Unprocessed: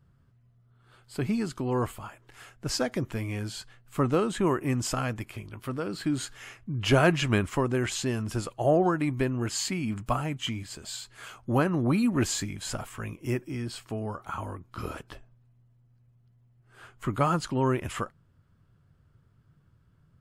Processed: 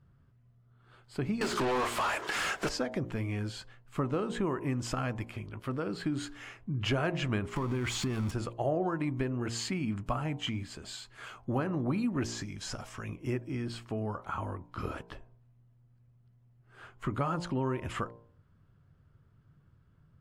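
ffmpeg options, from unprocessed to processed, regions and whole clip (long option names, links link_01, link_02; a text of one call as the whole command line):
ffmpeg -i in.wav -filter_complex "[0:a]asettb=1/sr,asplit=3[link_01][link_02][link_03];[link_01]atrim=end=1.414[link_04];[link_02]atrim=start=1.41:end=2.69,asetpts=PTS-STARTPTS,afade=type=in:duration=0.004:curve=qsin,afade=type=out:start_time=1.276:duration=0.004:curve=qsin,bass=frequency=250:gain=-9,treble=frequency=4000:gain=10,bandreject=frequency=60:width_type=h:width=6,bandreject=frequency=120:width_type=h:width=6,bandreject=frequency=180:width_type=h:width=6,bandreject=frequency=240:width_type=h:width=6,bandreject=frequency=300:width_type=h:width=6,bandreject=frequency=360:width_type=h:width=6,bandreject=frequency=420:width_type=h:width=6,asplit=2[link_05][link_06];[link_06]highpass=frequency=720:poles=1,volume=40dB,asoftclip=type=tanh:threshold=-17.5dB[link_07];[link_05][link_07]amix=inputs=2:normalize=0,lowpass=frequency=3800:poles=1,volume=-6dB[link_08];[link_03]atrim=start=2.686[link_09];[link_04][link_08]acrossfade=duration=0.004:curve1=hsin:curve2=qsin[link_10];[link_10][link_09]acrossfade=duration=0.004:curve1=qsin:curve2=hsin,asettb=1/sr,asplit=3[link_11][link_12][link_13];[link_11]atrim=end=7.564[link_14];[link_12]atrim=start=7.56:end=8.31,asetpts=PTS-STARTPTS,afade=type=in:duration=0.004:curve=qsin,afade=type=out:start_time=0.746:duration=0.004:curve=qsin,aeval=exprs='val(0)+0.5*0.0299*sgn(val(0))':channel_layout=same,acompressor=threshold=-26dB:ratio=3:attack=3.2:release=140:knee=1:detection=peak,aecho=1:1:0.9:0.36,atrim=end_sample=33075[link_15];[link_13]atrim=start=8.306[link_16];[link_14][link_15]acrossfade=duration=0.004:curve1=hsin:curve2=qsin[link_17];[link_17][link_16]acrossfade=duration=0.004:curve1=qsin:curve2=hsin,asettb=1/sr,asplit=3[link_18][link_19][link_20];[link_18]atrim=end=12.244[link_21];[link_19]atrim=start=12.24:end=13.09,asetpts=PTS-STARTPTS,afade=type=in:duration=0.004:curve=qsin,afade=type=out:start_time=0.846:duration=0.004:curve=qsin,equalizer=frequency=5600:width=2.7:gain=11.5,acrossover=split=2300|5000[link_22][link_23][link_24];[link_22]acompressor=threshold=-37dB:ratio=4[link_25];[link_23]acompressor=threshold=-43dB:ratio=4[link_26];[link_24]acompressor=threshold=-34dB:ratio=4[link_27];[link_25][link_26][link_27]amix=inputs=3:normalize=0[link_28];[link_20]atrim=start=13.086[link_29];[link_21][link_28]acrossfade=duration=0.004:curve1=hsin:curve2=qsin[link_30];[link_30][link_29]acrossfade=duration=0.004:curve1=qsin:curve2=hsin,aemphasis=mode=reproduction:type=50kf,bandreject=frequency=58.13:width_type=h:width=4,bandreject=frequency=116.26:width_type=h:width=4,bandreject=frequency=174.39:width_type=h:width=4,bandreject=frequency=232.52:width_type=h:width=4,bandreject=frequency=290.65:width_type=h:width=4,bandreject=frequency=348.78:width_type=h:width=4,bandreject=frequency=406.91:width_type=h:width=4,bandreject=frequency=465.04:width_type=h:width=4,bandreject=frequency=523.17:width_type=h:width=4,bandreject=frequency=581.3:width_type=h:width=4,bandreject=frequency=639.43:width_type=h:width=4,bandreject=frequency=697.56:width_type=h:width=4,bandreject=frequency=755.69:width_type=h:width=4,bandreject=frequency=813.82:width_type=h:width=4,bandreject=frequency=871.95:width_type=h:width=4,bandreject=frequency=930.08:width_type=h:width=4,bandreject=frequency=988.21:width_type=h:width=4,bandreject=frequency=1046.34:width_type=h:width=4,acompressor=threshold=-29dB:ratio=3" out.wav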